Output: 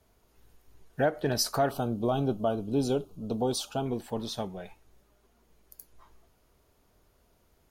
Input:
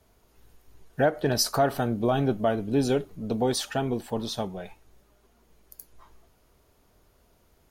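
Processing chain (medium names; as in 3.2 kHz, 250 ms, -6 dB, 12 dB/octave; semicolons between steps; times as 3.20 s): 1.71–3.86 s: Butterworth band-stop 1.9 kHz, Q 1.5; trim -3.5 dB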